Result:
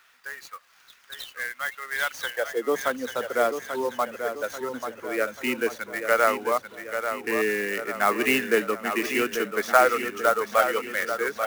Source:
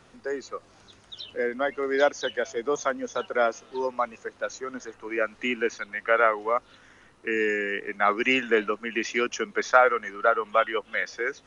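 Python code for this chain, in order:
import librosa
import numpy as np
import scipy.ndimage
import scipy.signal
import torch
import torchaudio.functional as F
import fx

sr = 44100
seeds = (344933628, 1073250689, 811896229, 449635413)

y = fx.filter_sweep_highpass(x, sr, from_hz=1600.0, to_hz=110.0, start_s=2.14, end_s=2.92, q=1.4)
y = fx.echo_feedback(y, sr, ms=838, feedback_pct=50, wet_db=-8.0)
y = fx.clock_jitter(y, sr, seeds[0], jitter_ms=0.022)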